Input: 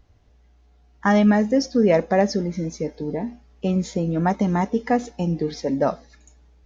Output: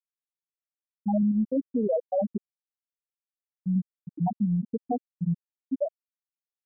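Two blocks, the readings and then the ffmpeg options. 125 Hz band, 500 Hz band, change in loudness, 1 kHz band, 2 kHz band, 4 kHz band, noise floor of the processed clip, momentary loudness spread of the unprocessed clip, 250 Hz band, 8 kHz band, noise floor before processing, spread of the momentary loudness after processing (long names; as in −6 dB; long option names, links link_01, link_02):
−6.0 dB, −9.5 dB, −7.0 dB, −11.5 dB, below −40 dB, below −40 dB, below −85 dBFS, 11 LU, −7.0 dB, can't be measured, −56 dBFS, 10 LU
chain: -af "afftfilt=real='re*gte(hypot(re,im),1)':imag='im*gte(hypot(re,im),1)':win_size=1024:overlap=0.75,alimiter=limit=-19dB:level=0:latency=1:release=89"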